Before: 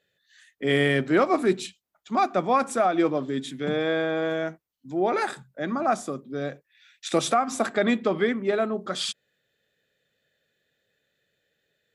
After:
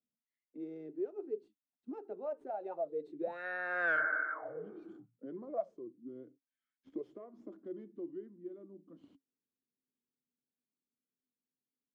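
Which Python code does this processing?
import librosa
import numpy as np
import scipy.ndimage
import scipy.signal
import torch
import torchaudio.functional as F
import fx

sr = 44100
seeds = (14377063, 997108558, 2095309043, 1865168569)

p1 = fx.tracing_dist(x, sr, depth_ms=0.071)
p2 = fx.doppler_pass(p1, sr, speed_mps=38, closest_m=2.9, pass_at_s=3.91)
p3 = fx.dynamic_eq(p2, sr, hz=550.0, q=2.3, threshold_db=-52.0, ratio=4.0, max_db=4)
p4 = 10.0 ** (-30.0 / 20.0) * (np.abs((p3 / 10.0 ** (-30.0 / 20.0) + 3.0) % 4.0 - 2.0) - 1.0)
p5 = p3 + F.gain(torch.from_numpy(p4), -9.0).numpy()
p6 = fx.spec_repair(p5, sr, seeds[0], start_s=3.99, length_s=0.94, low_hz=220.0, high_hz=2200.0, source='both')
p7 = fx.auto_wah(p6, sr, base_hz=250.0, top_hz=1500.0, q=11.0, full_db=-34.5, direction='up')
p8 = fx.low_shelf(p7, sr, hz=210.0, db=9.5)
p9 = fx.band_squash(p8, sr, depth_pct=40)
y = F.gain(torch.from_numpy(p9), 16.0).numpy()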